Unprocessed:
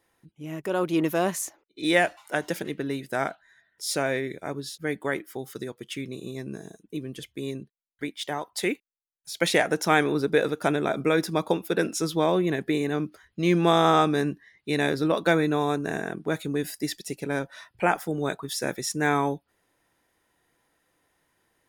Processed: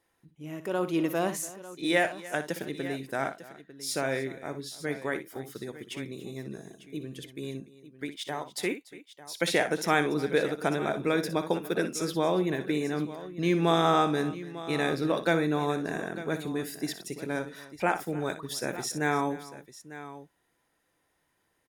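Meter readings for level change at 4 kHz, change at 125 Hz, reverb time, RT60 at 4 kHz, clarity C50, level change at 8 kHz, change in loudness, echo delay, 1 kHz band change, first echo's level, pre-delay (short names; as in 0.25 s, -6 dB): -3.5 dB, -3.5 dB, none, none, none, -3.5 dB, -3.5 dB, 60 ms, -3.5 dB, -11.5 dB, none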